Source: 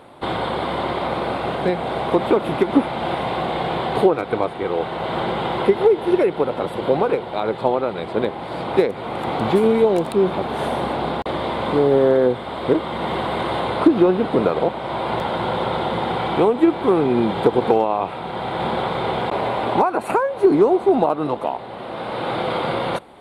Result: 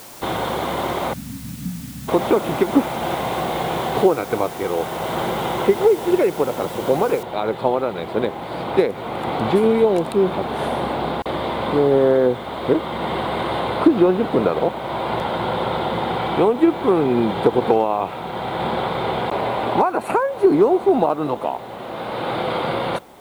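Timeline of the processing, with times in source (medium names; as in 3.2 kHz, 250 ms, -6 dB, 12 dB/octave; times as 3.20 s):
1.13–2.08 s: spectral selection erased 300–6200 Hz
7.23 s: noise floor step -41 dB -58 dB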